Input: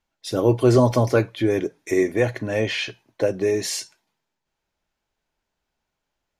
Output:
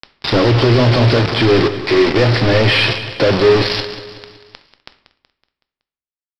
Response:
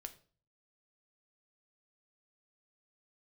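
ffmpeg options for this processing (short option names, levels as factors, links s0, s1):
-filter_complex "[0:a]aeval=exprs='val(0)+0.5*0.0891*sgn(val(0))':c=same,equalizer=f=110:t=o:w=0.62:g=3.5,alimiter=limit=0.282:level=0:latency=1:release=40,aresample=11025,acrusher=bits=3:mix=0:aa=0.000001,aresample=44100,asoftclip=type=tanh:threshold=0.299,aecho=1:1:187|374|561|748|935:0.224|0.114|0.0582|0.0297|0.0151,asplit=2[s0][s1];[1:a]atrim=start_sample=2205,asetrate=26019,aresample=44100[s2];[s1][s2]afir=irnorm=-1:irlink=0,volume=2.11[s3];[s0][s3]amix=inputs=2:normalize=0,volume=0.841"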